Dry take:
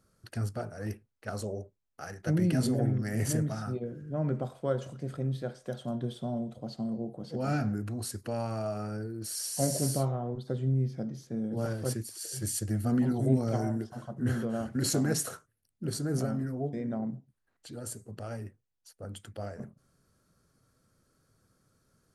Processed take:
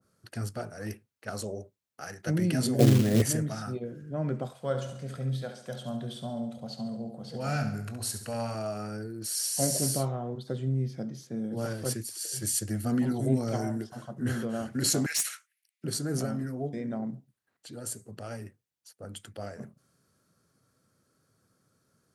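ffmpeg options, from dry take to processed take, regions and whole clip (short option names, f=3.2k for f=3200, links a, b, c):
-filter_complex "[0:a]asettb=1/sr,asplit=3[a][b][c];[a]atrim=end=2.794[d];[b]atrim=start=2.79:end=3.22,asetpts=PTS-STARTPTS,afade=t=in:d=0.004:c=qsin,afade=t=out:st=0.426:d=0.004:c=qsin,lowpass=1.5k,lowshelf=f=750:t=q:w=1.5:g=9,acrusher=bits=5:mode=log:mix=0:aa=0.000001[e];[c]atrim=start=3.216[f];[d][e]acrossfade=d=0.004:c1=hsin:c2=qsin[g];[g][f]acrossfade=d=0.004:c1=qsin:c2=hsin,asettb=1/sr,asplit=3[h][i][j];[h]atrim=end=4.534[k];[i]atrim=start=4.53:end=8.55,asetpts=PTS-STARTPTS,afade=t=in:d=0.004:c=qsin,afade=t=out:st=4.016:d=0.004:c=qsin,equalizer=f=330:w=3:g=-12.5,asplit=2[l][m];[m]adelay=22,volume=-14dB[n];[l][n]amix=inputs=2:normalize=0,atrim=end_sample=177282,aecho=1:1:69|138|207|276|345|414:0.355|0.174|0.0852|0.0417|0.0205|0.01,atrim=end_sample=177282[o];[j]atrim=start=8.546[p];[k][o]acrossfade=d=0.004:c1=hsin:c2=qsin[q];[q][p]acrossfade=d=0.004:c1=qsin:c2=hsin,asettb=1/sr,asplit=3[r][s][t];[r]atrim=end=15.064[u];[s]atrim=start=15.06:end=15.84,asetpts=PTS-STARTPTS,afade=t=in:d=0.004:c=qsin,afade=t=out:st=0.776:d=0.004:c=qsin,highpass=f=2.2k:t=q:w=3.8,aeval=exprs='clip(val(0),-1,0.0335)':c=same[v];[t]atrim=start=15.836[w];[u][v]acrossfade=d=0.004:c1=hsin:c2=qsin[x];[x][w]acrossfade=d=0.004:c1=qsin:c2=hsin,highpass=100,adynamicequalizer=threshold=0.00282:dfrequency=1600:dqfactor=0.7:tfrequency=1600:tqfactor=0.7:attack=5:release=100:ratio=0.375:range=2.5:mode=boostabove:tftype=highshelf"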